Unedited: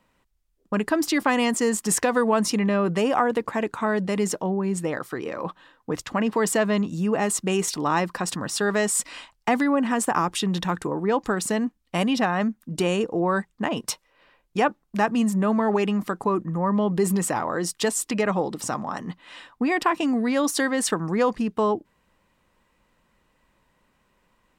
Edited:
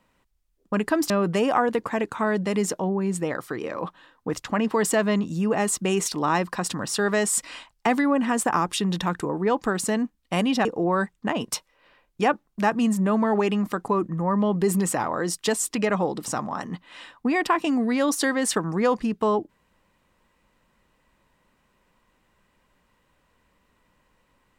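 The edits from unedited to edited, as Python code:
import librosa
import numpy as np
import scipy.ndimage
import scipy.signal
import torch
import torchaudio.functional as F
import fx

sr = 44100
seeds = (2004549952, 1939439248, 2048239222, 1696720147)

y = fx.edit(x, sr, fx.cut(start_s=1.1, length_s=1.62),
    fx.cut(start_s=12.27, length_s=0.74), tone=tone)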